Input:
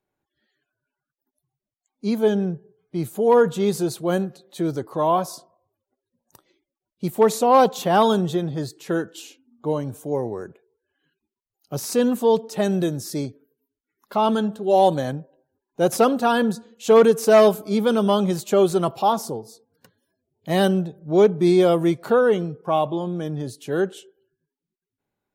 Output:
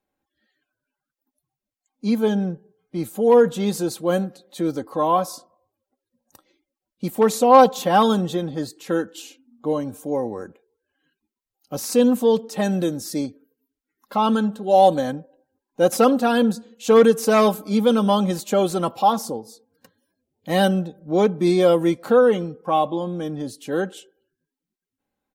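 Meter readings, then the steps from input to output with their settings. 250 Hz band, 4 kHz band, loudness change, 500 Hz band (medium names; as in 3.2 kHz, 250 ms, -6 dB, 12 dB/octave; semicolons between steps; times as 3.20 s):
+1.5 dB, +1.0 dB, +0.5 dB, 0.0 dB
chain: comb 3.8 ms, depth 54%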